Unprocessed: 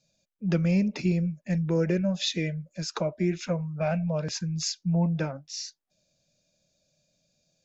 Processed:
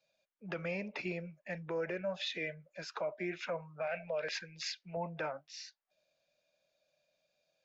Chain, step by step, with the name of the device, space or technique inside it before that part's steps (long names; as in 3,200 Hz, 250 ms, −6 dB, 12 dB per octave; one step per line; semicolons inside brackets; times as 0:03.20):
0:03.87–0:04.97: octave-band graphic EQ 125/250/500/1,000/2,000/4,000 Hz −7/−4/+5/−8/+9/+4 dB
DJ mixer with the lows and highs turned down (three-way crossover with the lows and the highs turned down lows −22 dB, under 490 Hz, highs −21 dB, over 3,300 Hz; brickwall limiter −30 dBFS, peak gain reduction 11 dB)
level +1.5 dB